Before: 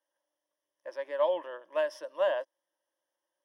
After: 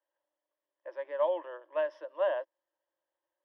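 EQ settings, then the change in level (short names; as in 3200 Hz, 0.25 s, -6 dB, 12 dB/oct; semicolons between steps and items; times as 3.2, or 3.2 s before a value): Chebyshev high-pass 320 Hz, order 4; air absorption 320 m; 0.0 dB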